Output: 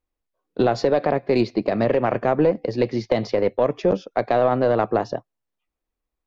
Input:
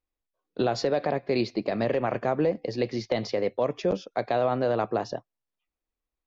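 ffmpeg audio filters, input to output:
ffmpeg -i in.wav -af "highshelf=frequency=2300:gain=-7.5,aeval=exprs='0.237*(cos(1*acos(clip(val(0)/0.237,-1,1)))-cos(1*PI/2))+0.0211*(cos(2*acos(clip(val(0)/0.237,-1,1)))-cos(2*PI/2))+0.00422*(cos(7*acos(clip(val(0)/0.237,-1,1)))-cos(7*PI/2))':channel_layout=same,volume=7dB" out.wav

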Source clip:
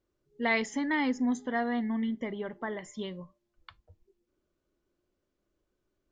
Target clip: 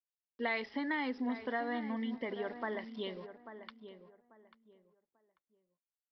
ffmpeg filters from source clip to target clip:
ffmpeg -i in.wav -filter_complex "[0:a]highpass=300,acompressor=threshold=-33dB:ratio=3,aresample=11025,aeval=exprs='val(0)*gte(abs(val(0)),0.00168)':channel_layout=same,aresample=44100,asplit=2[link_01][link_02];[link_02]adelay=841,lowpass=frequency=1700:poles=1,volume=-11dB,asplit=2[link_03][link_04];[link_04]adelay=841,lowpass=frequency=1700:poles=1,volume=0.25,asplit=2[link_05][link_06];[link_06]adelay=841,lowpass=frequency=1700:poles=1,volume=0.25[link_07];[link_01][link_03][link_05][link_07]amix=inputs=4:normalize=0" out.wav

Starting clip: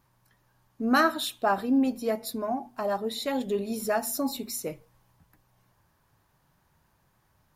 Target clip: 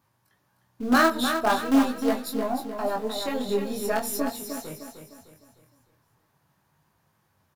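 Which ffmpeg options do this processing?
ffmpeg -i in.wav -filter_complex "[0:a]highpass=frequency=69:width=0.5412,highpass=frequency=69:width=1.3066,asplit=2[link_01][link_02];[link_02]acrusher=bits=4:dc=4:mix=0:aa=0.000001,volume=-7dB[link_03];[link_01][link_03]amix=inputs=2:normalize=0,asplit=3[link_04][link_05][link_06];[link_04]afade=type=out:start_time=4.27:duration=0.02[link_07];[link_05]aeval=exprs='(tanh(56.2*val(0)+0.6)-tanh(0.6))/56.2':channel_layout=same,afade=type=in:start_time=4.27:duration=0.02,afade=type=out:start_time=4.69:duration=0.02[link_08];[link_06]afade=type=in:start_time=4.69:duration=0.02[link_09];[link_07][link_08][link_09]amix=inputs=3:normalize=0,flanger=delay=19:depth=5.8:speed=0.43,aecho=1:1:305|610|915|1220|1525:0.422|0.173|0.0709|0.0291|0.0119,volume=2dB" out.wav

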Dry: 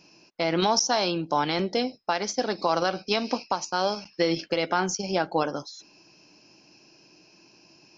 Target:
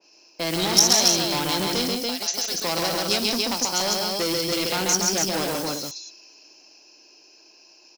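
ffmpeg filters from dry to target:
ffmpeg -i in.wav -filter_complex "[0:a]tiltshelf=frequency=810:gain=8,asettb=1/sr,asplit=3[link_01][link_02][link_03];[link_01]atrim=end=2.024[link_04];[link_02]atrim=start=2.02:end=2.54,asetpts=PTS-STARTPTS,afade=type=in:duration=0.004:curve=qsin,afade=type=out:start_time=0.516:duration=0.004:curve=qsin,acrossover=split=1400|3000[link_05][link_06][link_07];[link_05]acompressor=threshold=-35dB:ratio=4[link_08];[link_06]acompressor=threshold=-46dB:ratio=4[link_09];[link_07]acompressor=threshold=-43dB:ratio=4[link_10];[link_08][link_09][link_10]amix=inputs=3:normalize=0[link_11];[link_03]atrim=start=2.536[link_12];[link_04][link_11]acrossfade=duration=0.004:curve1=hsin:curve2=qsin[link_13];[link_13][link_12]acrossfade=duration=0.004:curve1=qsin:curve2=hsin,acrossover=split=350[link_14][link_15];[link_14]aeval=exprs='val(0)*gte(abs(val(0)),0.01)':channel_layout=same[link_16];[link_16][link_15]amix=inputs=2:normalize=0,aecho=1:1:134.1|172|285.7:0.708|0.282|0.631,asoftclip=type=tanh:threshold=-18.5dB,crystalizer=i=7:c=0,adynamicequalizer=threshold=0.0112:dfrequency=2300:dqfactor=0.7:tfrequency=2300:tqfactor=0.7:attack=5:release=100:ratio=0.375:range=4:mode=boostabove:tftype=highshelf,volume=-4.5dB" out.wav

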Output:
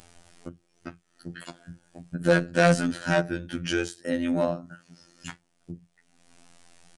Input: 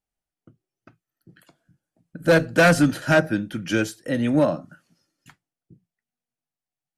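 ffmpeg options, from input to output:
ffmpeg -i in.wav -af "acompressor=mode=upward:threshold=-18dB:ratio=2.5,aresample=22050,aresample=44100,afftfilt=real='hypot(re,im)*cos(PI*b)':imag='0':win_size=2048:overlap=0.75,volume=-1.5dB" out.wav

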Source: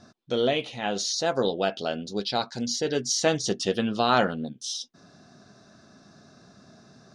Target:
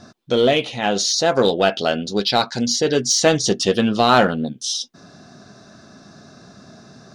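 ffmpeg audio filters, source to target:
ffmpeg -i in.wav -filter_complex "[0:a]asettb=1/sr,asplit=3[link_01][link_02][link_03];[link_01]atrim=end=1.324[link_04];[link_02]atrim=start=1.32:end=2.6,asetpts=PTS-STARTPTS,afade=type=in:duration=0.004:curve=qsin,afade=type=out:start_time=1.276:duration=0.004:curve=qsin,equalizer=frequency=2000:width=0.64:gain=3.5[link_05];[link_03]atrim=start=2.596[link_06];[link_04][link_05]acrossfade=duration=0.004:curve1=hsin:curve2=qsin[link_07];[link_07][link_06]acrossfade=duration=0.004:curve1=qsin:curve2=hsin,asplit=2[link_08][link_09];[link_09]asoftclip=type=hard:threshold=-21.5dB,volume=-6.5dB[link_10];[link_08][link_10]amix=inputs=2:normalize=0,volume=5.5dB" out.wav

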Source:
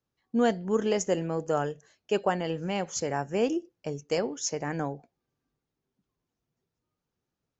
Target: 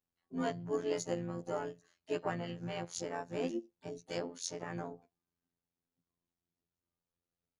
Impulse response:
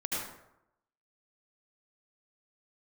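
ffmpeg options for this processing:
-filter_complex "[0:a]afftfilt=real='hypot(re,im)*cos(PI*b)':imag='0':win_size=2048:overlap=0.75,asplit=4[link_01][link_02][link_03][link_04];[link_02]asetrate=29433,aresample=44100,atempo=1.49831,volume=-9dB[link_05];[link_03]asetrate=33038,aresample=44100,atempo=1.33484,volume=-17dB[link_06];[link_04]asetrate=66075,aresample=44100,atempo=0.66742,volume=-16dB[link_07];[link_01][link_05][link_06][link_07]amix=inputs=4:normalize=0,volume=-6.5dB"

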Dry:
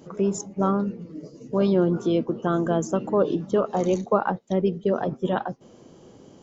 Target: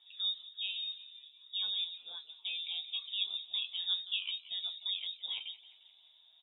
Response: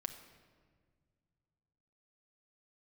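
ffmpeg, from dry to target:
-filter_complex "[0:a]flanger=delay=8.5:depth=3.8:regen=50:speed=0.85:shape=triangular,asplit=5[link_01][link_02][link_03][link_04][link_05];[link_02]adelay=176,afreqshift=51,volume=-17dB[link_06];[link_03]adelay=352,afreqshift=102,volume=-23dB[link_07];[link_04]adelay=528,afreqshift=153,volume=-29dB[link_08];[link_05]adelay=704,afreqshift=204,volume=-35.1dB[link_09];[link_01][link_06][link_07][link_08][link_09]amix=inputs=5:normalize=0,flanger=delay=8.5:depth=7.7:regen=-42:speed=0.37:shape=sinusoidal,asettb=1/sr,asplit=3[link_10][link_11][link_12];[link_10]atrim=end=1.844[link_13];[link_11]atrim=start=1.84:end=2.45,asetpts=PTS-STARTPTS,afade=type=in:duration=0.004:curve=qsin,afade=type=out:start_time=0.606:duration=0.004:curve=qsin,equalizer=frequency=210:width=0.38:gain=-12[link_14];[link_12]atrim=start=2.446[link_15];[link_13][link_14]acrossfade=duration=0.004:curve1=hsin:curve2=qsin[link_16];[link_16][link_15]acrossfade=duration=0.004:curve1=qsin:curve2=hsin,lowpass=frequency=3300:width_type=q:width=0.5098,lowpass=frequency=3300:width_type=q:width=0.6013,lowpass=frequency=3300:width_type=q:width=0.9,lowpass=frequency=3300:width_type=q:width=2.563,afreqshift=-3900,volume=-7dB"

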